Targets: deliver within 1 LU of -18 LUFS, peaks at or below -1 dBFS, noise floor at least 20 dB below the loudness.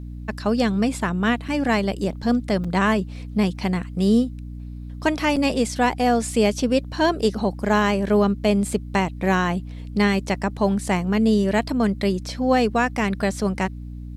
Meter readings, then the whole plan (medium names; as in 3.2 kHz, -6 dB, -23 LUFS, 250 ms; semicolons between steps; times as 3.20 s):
dropouts 3; longest dropout 5.3 ms; hum 60 Hz; highest harmonic 300 Hz; hum level -31 dBFS; loudness -22.0 LUFS; peak level -7.5 dBFS; loudness target -18.0 LUFS
-> interpolate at 1.48/2.64/5.36 s, 5.3 ms; de-hum 60 Hz, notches 5; trim +4 dB